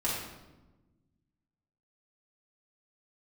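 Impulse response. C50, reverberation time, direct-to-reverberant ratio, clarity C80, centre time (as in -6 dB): 0.5 dB, 1.1 s, -7.0 dB, 3.5 dB, 64 ms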